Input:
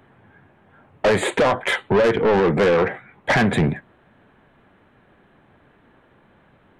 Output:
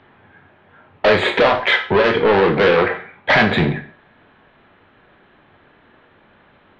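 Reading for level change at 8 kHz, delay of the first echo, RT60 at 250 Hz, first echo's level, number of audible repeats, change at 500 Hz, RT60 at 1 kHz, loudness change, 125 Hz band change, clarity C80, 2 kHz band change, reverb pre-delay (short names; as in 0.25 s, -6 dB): under -10 dB, none, 0.45 s, none, none, +3.0 dB, 0.40 s, +3.5 dB, +0.5 dB, 15.5 dB, +6.0 dB, 6 ms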